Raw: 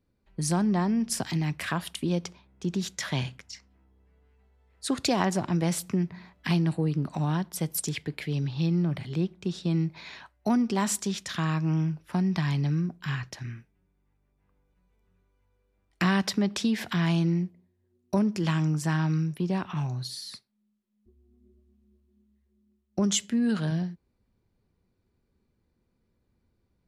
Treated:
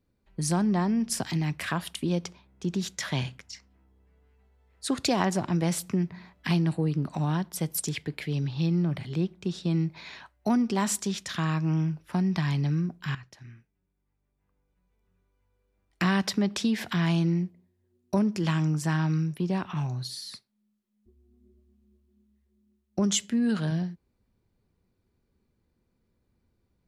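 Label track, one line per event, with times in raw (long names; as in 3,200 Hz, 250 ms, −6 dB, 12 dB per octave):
13.150000	16.360000	fade in, from −12 dB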